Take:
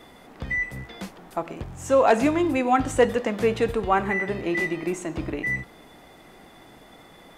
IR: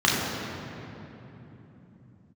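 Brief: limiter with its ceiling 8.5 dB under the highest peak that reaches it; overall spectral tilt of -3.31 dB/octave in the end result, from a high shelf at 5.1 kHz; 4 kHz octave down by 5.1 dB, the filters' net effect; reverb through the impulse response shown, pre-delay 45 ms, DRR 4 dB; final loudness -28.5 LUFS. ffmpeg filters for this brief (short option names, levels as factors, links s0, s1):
-filter_complex "[0:a]equalizer=f=4000:t=o:g=-4,highshelf=f=5100:g=-8.5,alimiter=limit=0.141:level=0:latency=1,asplit=2[s0][s1];[1:a]atrim=start_sample=2205,adelay=45[s2];[s1][s2]afir=irnorm=-1:irlink=0,volume=0.0708[s3];[s0][s3]amix=inputs=2:normalize=0,volume=0.708"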